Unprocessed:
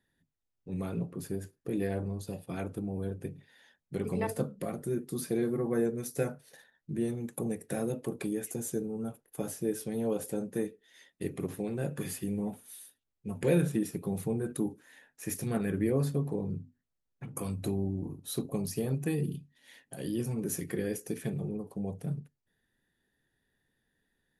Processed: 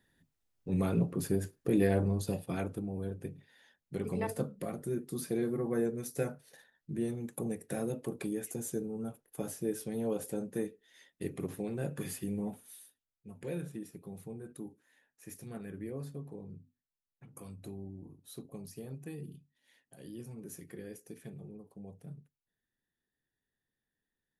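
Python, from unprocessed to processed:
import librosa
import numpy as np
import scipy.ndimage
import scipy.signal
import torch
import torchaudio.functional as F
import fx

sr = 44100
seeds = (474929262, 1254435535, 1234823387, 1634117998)

y = fx.gain(x, sr, db=fx.line((2.3, 5.0), (2.87, -2.5), (12.64, -2.5), (13.34, -12.5)))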